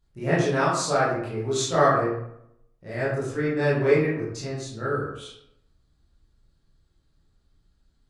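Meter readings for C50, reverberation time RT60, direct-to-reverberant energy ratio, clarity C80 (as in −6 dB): 1.0 dB, 0.75 s, −10.0 dB, 4.5 dB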